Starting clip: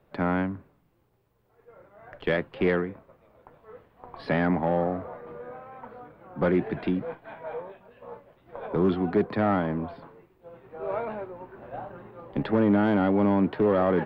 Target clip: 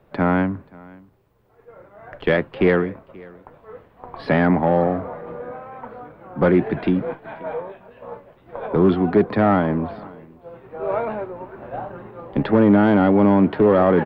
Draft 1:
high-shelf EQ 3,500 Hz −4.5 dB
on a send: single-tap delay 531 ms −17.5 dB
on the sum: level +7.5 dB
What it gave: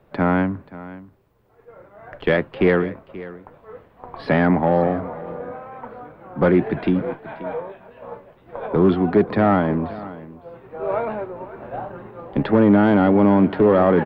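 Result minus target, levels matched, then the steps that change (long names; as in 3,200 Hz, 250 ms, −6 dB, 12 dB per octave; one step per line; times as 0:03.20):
echo-to-direct +6.5 dB
change: single-tap delay 531 ms −24 dB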